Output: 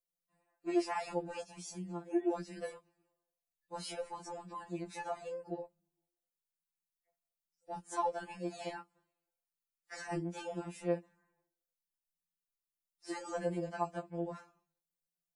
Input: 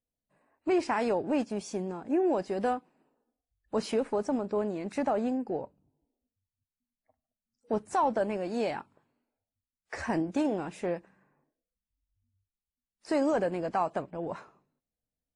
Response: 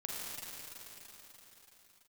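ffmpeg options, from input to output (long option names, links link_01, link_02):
-af "highshelf=frequency=5700:gain=11,afftfilt=real='re*2.83*eq(mod(b,8),0)':imag='im*2.83*eq(mod(b,8),0)':win_size=2048:overlap=0.75,volume=-6dB"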